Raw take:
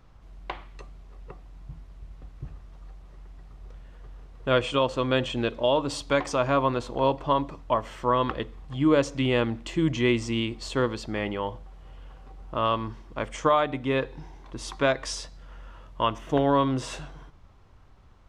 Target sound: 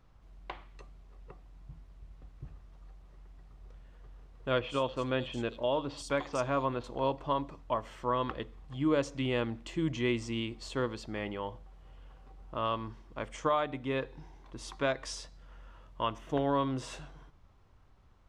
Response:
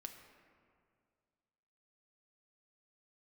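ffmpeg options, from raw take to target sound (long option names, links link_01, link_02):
-filter_complex "[0:a]asettb=1/sr,asplit=3[link_01][link_02][link_03];[link_01]atrim=end=4.604[link_04];[link_02]atrim=start=4.6:end=6.84,asetpts=PTS-STARTPTS,afade=type=in:duration=0.004:curve=qsin,afade=type=out:start_time=2.236:duration=0.004:curve=qsin,acrossover=split=4000[link_05][link_06];[link_06]adelay=80[link_07];[link_05][link_07]amix=inputs=2:normalize=0,atrim=end_sample=98784[link_08];[link_03]atrim=start=6.836[link_09];[link_04][link_08]acrossfade=duration=0.004:curve1=hsin:curve2=qsin[link_10];[link_10][link_09]acrossfade=duration=0.004:curve1=qsin:curve2=hsin,volume=-7.5dB"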